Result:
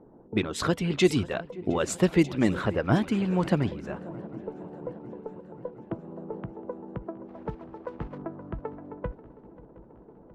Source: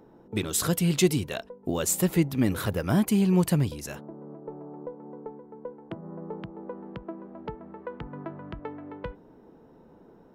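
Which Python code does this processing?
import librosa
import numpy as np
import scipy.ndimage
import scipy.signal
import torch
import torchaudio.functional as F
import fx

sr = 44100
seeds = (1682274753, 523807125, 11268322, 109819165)

y = fx.block_float(x, sr, bits=3, at=(7.27, 8.17), fade=0.02)
y = fx.hpss(y, sr, part='harmonic', gain_db=-10)
y = fx.echo_swing(y, sr, ms=717, ratio=3, feedback_pct=64, wet_db=-19)
y = fx.env_lowpass(y, sr, base_hz=950.0, full_db=-17.5)
y = F.gain(torch.from_numpy(y), 5.0).numpy()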